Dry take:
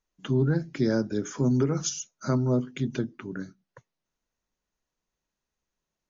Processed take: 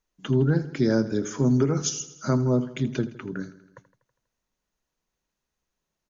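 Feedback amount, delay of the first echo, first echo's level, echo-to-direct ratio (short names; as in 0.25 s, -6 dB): 60%, 81 ms, -16.0 dB, -14.0 dB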